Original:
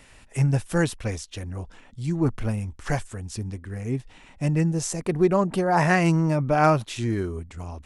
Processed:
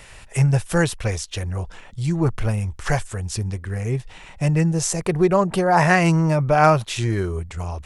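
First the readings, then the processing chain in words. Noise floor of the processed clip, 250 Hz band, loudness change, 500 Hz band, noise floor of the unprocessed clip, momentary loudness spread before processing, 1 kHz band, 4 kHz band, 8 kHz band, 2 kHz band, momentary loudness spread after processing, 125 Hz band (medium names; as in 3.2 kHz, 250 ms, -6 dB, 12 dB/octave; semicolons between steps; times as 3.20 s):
-44 dBFS, +2.0 dB, +3.5 dB, +4.0 dB, -51 dBFS, 15 LU, +4.5 dB, +6.5 dB, +6.5 dB, +5.0 dB, 12 LU, +4.5 dB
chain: peaking EQ 260 Hz -12.5 dB 0.49 oct; in parallel at -2.5 dB: compression, threshold -31 dBFS, peak gain reduction 15.5 dB; on the sum: trim +3.5 dB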